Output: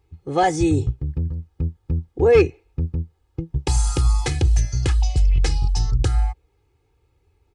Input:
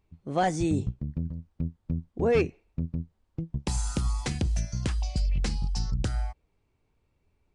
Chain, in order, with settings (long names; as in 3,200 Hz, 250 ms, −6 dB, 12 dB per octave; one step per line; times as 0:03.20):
high-pass filter 56 Hz
low-shelf EQ 83 Hz +6 dB
comb filter 2.4 ms, depth 97%
level +4.5 dB